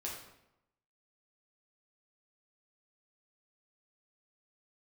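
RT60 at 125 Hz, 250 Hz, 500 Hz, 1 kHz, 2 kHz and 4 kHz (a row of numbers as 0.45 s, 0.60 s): 0.95 s, 0.90 s, 0.85 s, 0.85 s, 0.75 s, 0.65 s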